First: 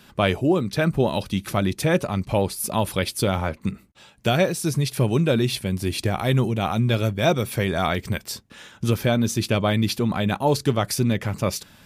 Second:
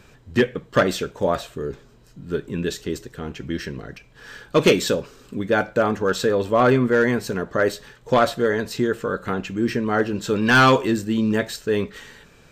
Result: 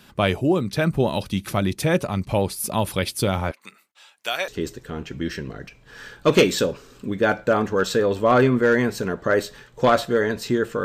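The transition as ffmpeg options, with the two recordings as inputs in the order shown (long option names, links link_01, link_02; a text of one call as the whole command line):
ffmpeg -i cue0.wav -i cue1.wav -filter_complex "[0:a]asettb=1/sr,asplit=3[link_01][link_02][link_03];[link_01]atrim=end=3.514[link_04];[link_02]atrim=start=3.51:end=4.48,asetpts=PTS-STARTPTS,afade=type=in:duration=0.004:curve=qsin,afade=type=out:start_time=0.966:duration=0.004:curve=qsin,highpass=910[link_05];[link_03]atrim=start=4.476[link_06];[link_04][link_05]acrossfade=duration=0.004:curve1=hsin:curve2=qsin[link_07];[link_07][link_06]acrossfade=duration=0.004:curve1=qsin:curve2=hsin,apad=whole_dur=10.84,atrim=end=10.84,atrim=end=4.482[link_08];[1:a]atrim=start=2.768:end=9.13[link_09];[link_08][link_09]acrossfade=duration=0.004:curve1=hsin:curve2=hsin" out.wav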